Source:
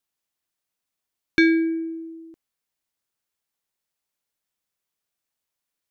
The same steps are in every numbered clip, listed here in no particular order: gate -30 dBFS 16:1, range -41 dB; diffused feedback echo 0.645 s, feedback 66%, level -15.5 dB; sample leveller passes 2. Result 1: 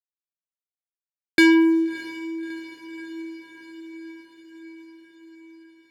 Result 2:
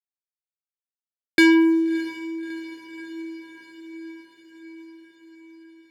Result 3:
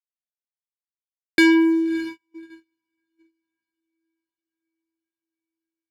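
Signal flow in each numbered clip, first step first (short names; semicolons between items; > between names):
gate > sample leveller > diffused feedback echo; sample leveller > gate > diffused feedback echo; sample leveller > diffused feedback echo > gate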